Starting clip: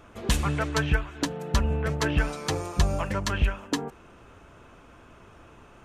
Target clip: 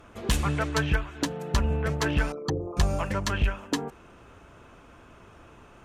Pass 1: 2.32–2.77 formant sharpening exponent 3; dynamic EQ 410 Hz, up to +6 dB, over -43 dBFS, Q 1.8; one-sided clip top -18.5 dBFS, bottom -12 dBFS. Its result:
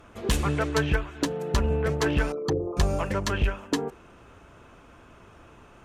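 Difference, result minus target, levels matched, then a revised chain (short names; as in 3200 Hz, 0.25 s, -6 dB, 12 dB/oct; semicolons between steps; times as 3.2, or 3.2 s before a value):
500 Hz band +3.5 dB
2.32–2.77 formant sharpening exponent 3; one-sided clip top -18.5 dBFS, bottom -12 dBFS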